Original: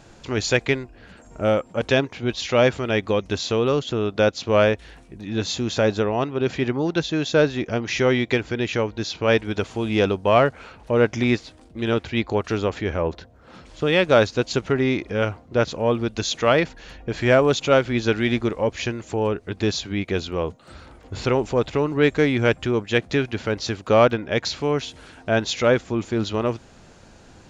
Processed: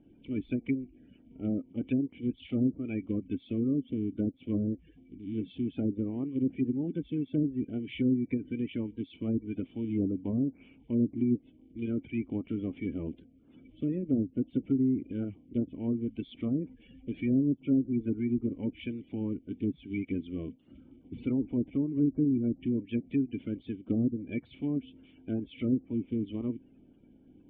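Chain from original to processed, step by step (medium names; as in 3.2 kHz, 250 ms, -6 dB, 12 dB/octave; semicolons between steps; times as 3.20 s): coarse spectral quantiser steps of 30 dB; low-pass that closes with the level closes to 400 Hz, closed at -13.5 dBFS; cascade formant filter i; low-pass that closes with the level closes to 870 Hz, closed at -25 dBFS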